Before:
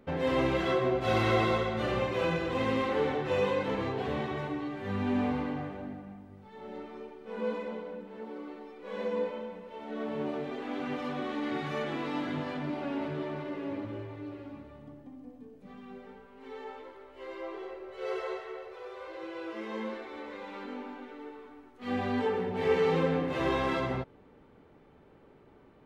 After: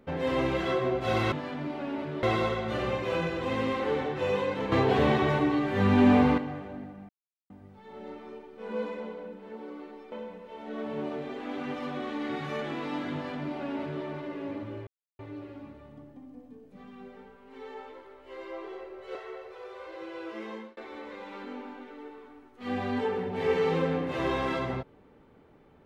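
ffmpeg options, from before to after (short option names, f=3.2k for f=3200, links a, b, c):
-filter_complex "[0:a]asplit=10[a][b][c][d][e][f][g][h][i][j];[a]atrim=end=1.322[k];[b]atrim=start=12.348:end=13.262[l];[c]atrim=start=1.318:end=3.812[m];[d]atrim=start=3.808:end=5.472,asetpts=PTS-STARTPTS,volume=9.5dB[n];[e]atrim=start=5.468:end=6.18,asetpts=PTS-STARTPTS,afade=t=out:st=0.708:d=0.004:c=hsin,apad=pad_dur=0.41[o];[f]atrim=start=6.18:end=8.802,asetpts=PTS-STARTPTS,afade=t=in:d=0.004:c=hsin[p];[g]atrim=start=9.338:end=14.09,asetpts=PTS-STARTPTS,afade=t=out:st=4.748:d=0.004:c=hsin,apad=pad_dur=0.32[q];[h]atrim=start=14.09:end=18.052,asetpts=PTS-STARTPTS,afade=t=in:d=0.004:c=hsin[r];[i]atrim=start=18.358:end=19.98,asetpts=PTS-STARTPTS,afade=t=out:st=1.302:d=0.32[s];[j]atrim=start=19.98,asetpts=PTS-STARTPTS,afade=t=in:d=0.004:c=hsin[t];[k][l]acrossfade=d=0.004:c1=hsin:c2=hsin[u];[u][m]acrossfade=d=0.004:c1=hsin:c2=hsin[v];[v][n]acrossfade=d=0.004:c1=hsin:c2=hsin[w];[o][p]concat=n=2:v=0:a=1[x];[w][x]acrossfade=d=0.004:c1=hsin:c2=hsin[y];[q][r]concat=n=2:v=0:a=1[z];[y][z]acrossfade=d=0.004:c1=hsin:c2=hsin[aa];[s][t]concat=n=2:v=0:a=1[ab];[aa][ab]acrossfade=d=0.004:c1=hsin:c2=hsin"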